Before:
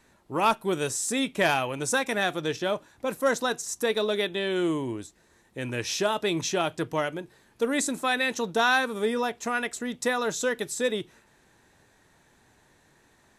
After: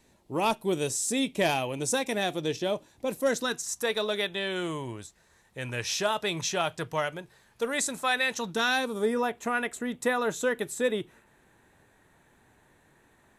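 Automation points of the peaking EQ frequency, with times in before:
peaking EQ -10 dB 0.91 oct
3.21 s 1.4 kHz
3.84 s 300 Hz
8.37 s 300 Hz
8.66 s 920 Hz
9.29 s 5.2 kHz

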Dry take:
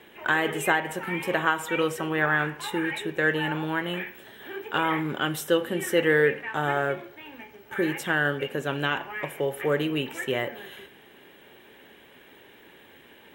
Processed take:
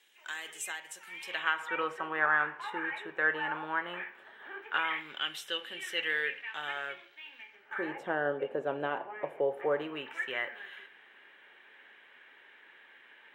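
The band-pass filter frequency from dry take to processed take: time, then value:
band-pass filter, Q 1.5
1.10 s 6.5 kHz
1.75 s 1.2 kHz
4.55 s 1.2 kHz
5.02 s 3.1 kHz
7.41 s 3.1 kHz
8.03 s 610 Hz
9.57 s 610 Hz
10.20 s 1.7 kHz

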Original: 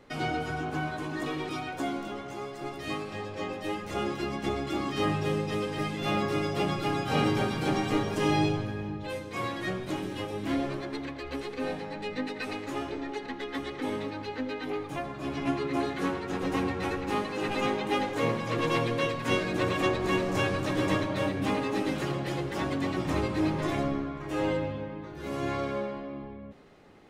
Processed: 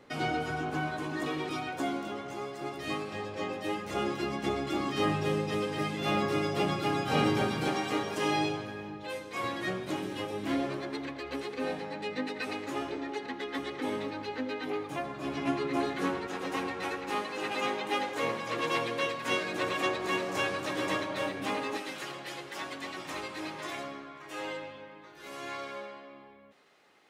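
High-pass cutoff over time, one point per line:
high-pass 6 dB/octave
120 Hz
from 7.68 s 450 Hz
from 9.44 s 180 Hz
from 16.27 s 580 Hz
from 21.77 s 1.5 kHz

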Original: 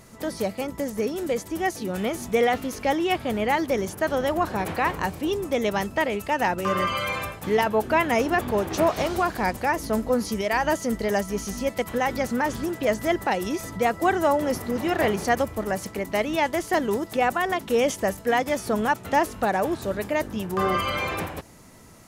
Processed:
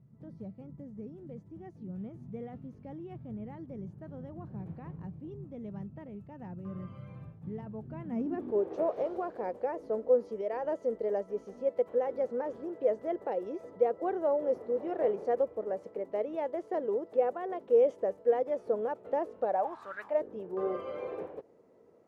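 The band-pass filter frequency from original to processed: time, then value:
band-pass filter, Q 4.3
7.94 s 140 Hz
8.72 s 490 Hz
19.43 s 490 Hz
19.98 s 1.6 kHz
20.21 s 460 Hz

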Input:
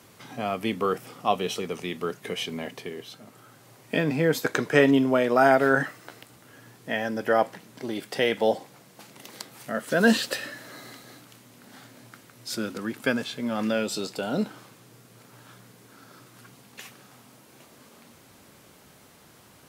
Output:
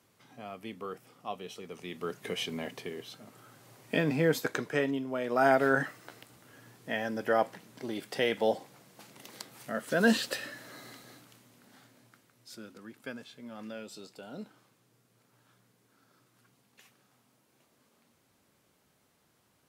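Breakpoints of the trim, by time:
1.56 s -14.5 dB
2.23 s -3.5 dB
4.29 s -3.5 dB
5.05 s -14.5 dB
5.48 s -5 dB
11.05 s -5 dB
12.61 s -16.5 dB

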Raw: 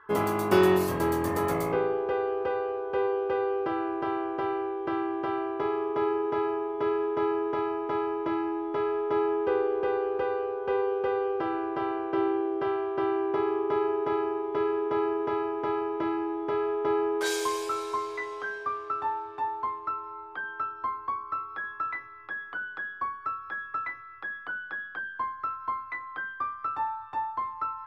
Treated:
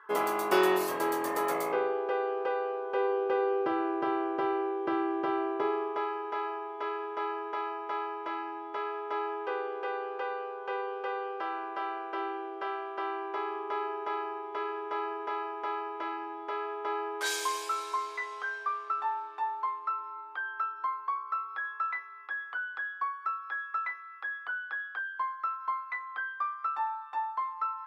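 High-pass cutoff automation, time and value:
2.88 s 450 Hz
3.61 s 200 Hz
5.47 s 200 Hz
6.08 s 750 Hz

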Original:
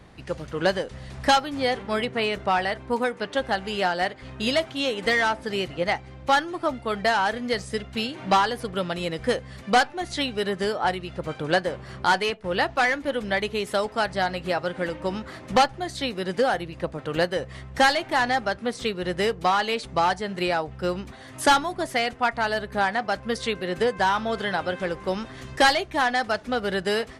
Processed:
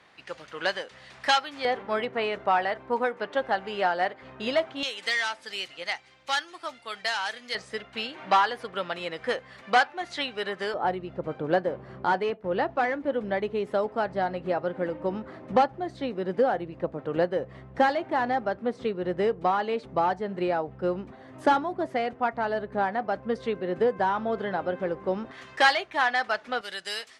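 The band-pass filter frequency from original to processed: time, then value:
band-pass filter, Q 0.56
2.3 kHz
from 1.65 s 850 Hz
from 4.83 s 4.6 kHz
from 7.55 s 1.4 kHz
from 10.74 s 400 Hz
from 25.31 s 1.6 kHz
from 26.61 s 5.9 kHz

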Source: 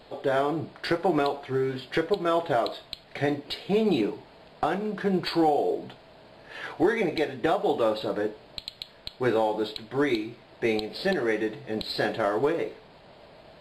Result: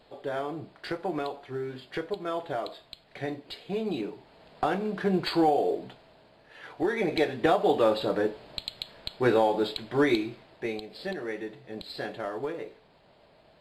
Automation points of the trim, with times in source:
4.06 s -7.5 dB
4.69 s -0.5 dB
5.66 s -0.5 dB
6.58 s -10 dB
7.20 s +1.5 dB
10.27 s +1.5 dB
10.75 s -8.5 dB

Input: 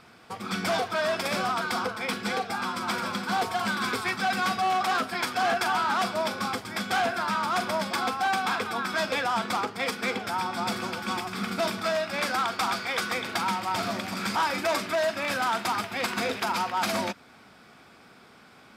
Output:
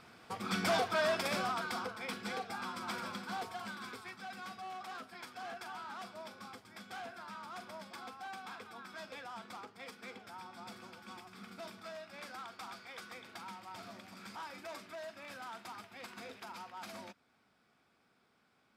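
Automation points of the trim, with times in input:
1.03 s -4.5 dB
1.87 s -11 dB
3.05 s -11 dB
4.15 s -20 dB

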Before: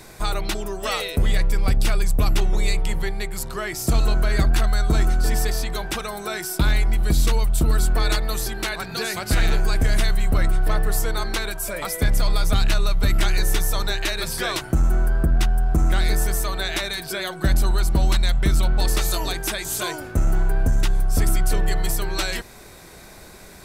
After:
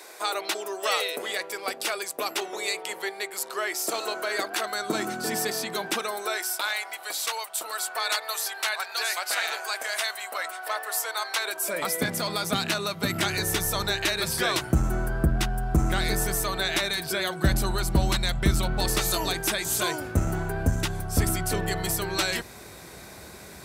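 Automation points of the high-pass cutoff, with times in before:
high-pass 24 dB/octave
4.52 s 390 Hz
5.13 s 190 Hz
5.86 s 190 Hz
6.59 s 630 Hz
11.36 s 630 Hz
11.82 s 160 Hz
12.98 s 160 Hz
13.64 s 56 Hz

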